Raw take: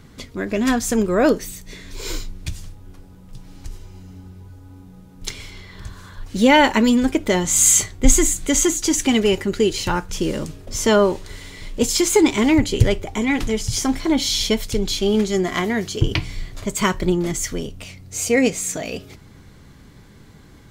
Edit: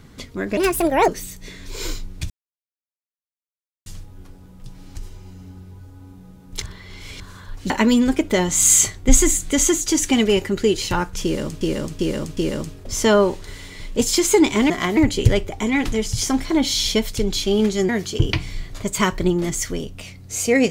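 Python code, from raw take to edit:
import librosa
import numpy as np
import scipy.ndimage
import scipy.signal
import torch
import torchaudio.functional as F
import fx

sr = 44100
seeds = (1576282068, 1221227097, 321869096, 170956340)

y = fx.edit(x, sr, fx.speed_span(start_s=0.57, length_s=0.76, speed=1.49),
    fx.insert_silence(at_s=2.55, length_s=1.56),
    fx.reverse_span(start_s=5.31, length_s=0.58),
    fx.cut(start_s=6.39, length_s=0.27),
    fx.repeat(start_s=10.19, length_s=0.38, count=4),
    fx.move(start_s=15.44, length_s=0.27, to_s=12.52), tone=tone)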